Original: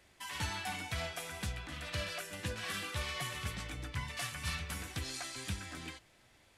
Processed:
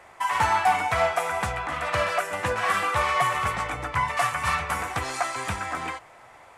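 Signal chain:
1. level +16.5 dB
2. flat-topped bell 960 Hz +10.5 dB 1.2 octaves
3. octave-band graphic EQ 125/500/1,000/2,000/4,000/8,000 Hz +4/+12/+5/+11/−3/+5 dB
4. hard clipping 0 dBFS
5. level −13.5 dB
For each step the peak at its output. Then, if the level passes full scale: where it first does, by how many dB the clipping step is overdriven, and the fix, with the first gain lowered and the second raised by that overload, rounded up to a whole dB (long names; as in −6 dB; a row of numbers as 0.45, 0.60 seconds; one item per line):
−6.5, −4.0, +4.5, 0.0, −13.5 dBFS
step 3, 4.5 dB
step 1 +11.5 dB, step 5 −8.5 dB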